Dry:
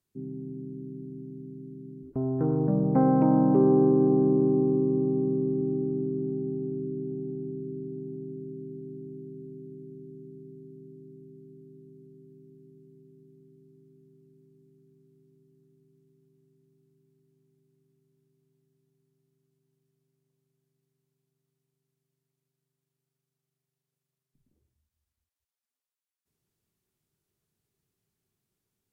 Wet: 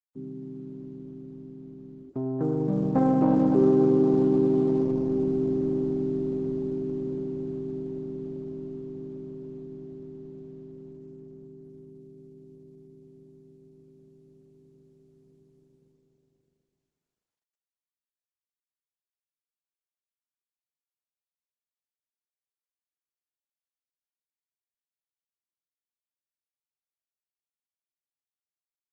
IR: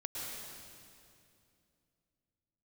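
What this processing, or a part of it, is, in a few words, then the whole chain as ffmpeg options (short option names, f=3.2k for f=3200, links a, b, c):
video call: -af "highpass=140,dynaudnorm=f=490:g=21:m=4dB,agate=range=-42dB:threshold=-60dB:ratio=16:detection=peak" -ar 48000 -c:a libopus -b:a 12k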